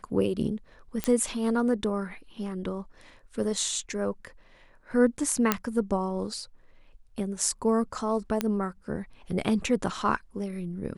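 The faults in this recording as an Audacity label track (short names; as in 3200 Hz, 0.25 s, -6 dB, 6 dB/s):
1.040000	1.040000	pop -11 dBFS
5.520000	5.520000	pop -6 dBFS
8.410000	8.410000	pop -11 dBFS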